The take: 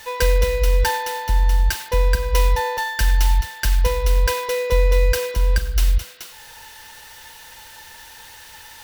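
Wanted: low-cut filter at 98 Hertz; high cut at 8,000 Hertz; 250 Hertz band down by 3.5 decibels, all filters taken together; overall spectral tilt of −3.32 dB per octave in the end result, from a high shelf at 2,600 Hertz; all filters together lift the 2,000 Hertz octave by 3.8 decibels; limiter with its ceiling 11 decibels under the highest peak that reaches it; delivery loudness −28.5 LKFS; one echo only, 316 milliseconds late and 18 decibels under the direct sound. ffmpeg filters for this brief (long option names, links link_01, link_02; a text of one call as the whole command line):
ffmpeg -i in.wav -af "highpass=98,lowpass=8000,equalizer=frequency=250:width_type=o:gain=-5,equalizer=frequency=2000:width_type=o:gain=8,highshelf=frequency=2600:gain=-8,alimiter=limit=-18dB:level=0:latency=1,aecho=1:1:316:0.126,volume=-1.5dB" out.wav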